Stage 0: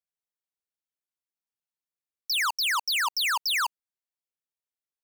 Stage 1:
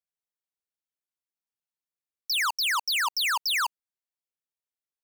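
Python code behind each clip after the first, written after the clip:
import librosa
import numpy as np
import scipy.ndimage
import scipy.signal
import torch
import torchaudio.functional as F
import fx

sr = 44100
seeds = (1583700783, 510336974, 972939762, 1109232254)

y = x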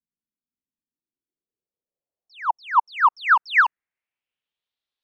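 y = fx.filter_sweep_lowpass(x, sr, from_hz=250.0, to_hz=3700.0, start_s=0.83, end_s=4.71, q=3.4)
y = y * 10.0 ** (4.5 / 20.0)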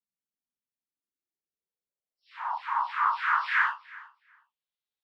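y = fx.phase_scramble(x, sr, seeds[0], window_ms=200)
y = fx.echo_feedback(y, sr, ms=367, feedback_pct=16, wet_db=-21.0)
y = y * 10.0 ** (-7.5 / 20.0)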